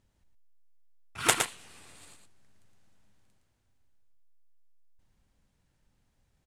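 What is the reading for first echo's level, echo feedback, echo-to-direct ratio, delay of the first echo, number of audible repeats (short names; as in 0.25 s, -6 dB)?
-6.0 dB, no steady repeat, -6.0 dB, 0.114 s, 1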